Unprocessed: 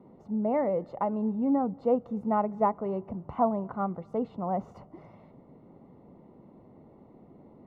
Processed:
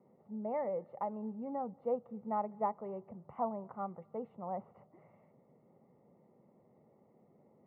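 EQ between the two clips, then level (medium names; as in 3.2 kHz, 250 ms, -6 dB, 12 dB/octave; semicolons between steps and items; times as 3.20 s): dynamic bell 930 Hz, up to +5 dB, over -45 dBFS, Q 3.2; cabinet simulation 190–2100 Hz, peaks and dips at 190 Hz -4 dB, 270 Hz -8 dB, 430 Hz -3 dB, 690 Hz -5 dB, 1 kHz -8 dB, 1.5 kHz -9 dB; peaking EQ 320 Hz -7.5 dB 0.45 oct; -5.0 dB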